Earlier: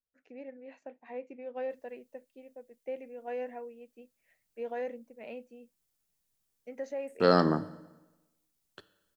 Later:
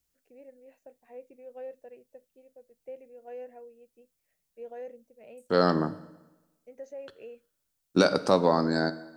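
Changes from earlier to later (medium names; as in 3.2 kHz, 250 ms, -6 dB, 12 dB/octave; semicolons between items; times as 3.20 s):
first voice: add graphic EQ 125/250/1000/2000/4000 Hz +4/-10/-10/-8/-10 dB; second voice: entry -1.70 s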